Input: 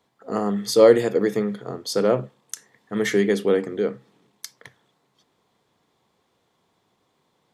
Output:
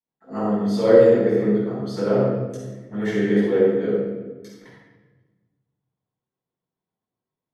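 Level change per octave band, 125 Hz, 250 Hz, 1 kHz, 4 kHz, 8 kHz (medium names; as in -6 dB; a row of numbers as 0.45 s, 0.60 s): +5.5 dB, +3.5 dB, -1.5 dB, -8.0 dB, under -10 dB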